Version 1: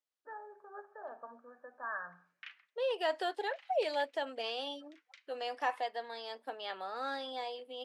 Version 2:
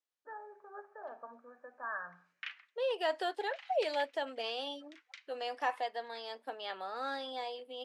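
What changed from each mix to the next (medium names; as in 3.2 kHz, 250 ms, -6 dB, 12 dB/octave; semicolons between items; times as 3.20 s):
background +6.5 dB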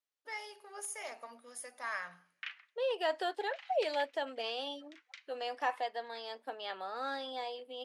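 first voice: remove brick-wall FIR low-pass 1.8 kHz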